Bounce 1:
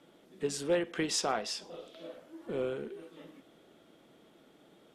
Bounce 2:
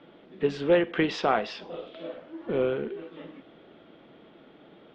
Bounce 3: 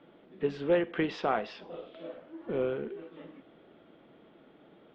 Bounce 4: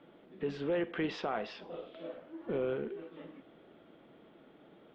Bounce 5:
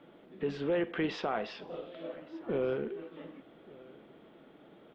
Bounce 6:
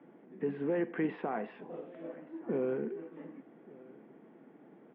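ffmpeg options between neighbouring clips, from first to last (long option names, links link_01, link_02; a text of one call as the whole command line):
ffmpeg -i in.wav -af "lowpass=frequency=3400:width=0.5412,lowpass=frequency=3400:width=1.3066,volume=8dB" out.wav
ffmpeg -i in.wav -af "highshelf=frequency=4700:gain=-10,volume=-4.5dB" out.wav
ffmpeg -i in.wav -af "alimiter=limit=-24dB:level=0:latency=1:release=30,volume=-1dB" out.wav
ffmpeg -i in.wav -af "aecho=1:1:1175:0.0708,volume=2dB" out.wav
ffmpeg -i in.wav -af "highpass=frequency=140:width=0.5412,highpass=frequency=140:width=1.3066,equalizer=frequency=240:width_type=q:width=4:gain=4,equalizer=frequency=590:width_type=q:width=4:gain=-6,equalizer=frequency=1300:width_type=q:width=4:gain=-8,lowpass=frequency=2000:width=0.5412,lowpass=frequency=2000:width=1.3066" out.wav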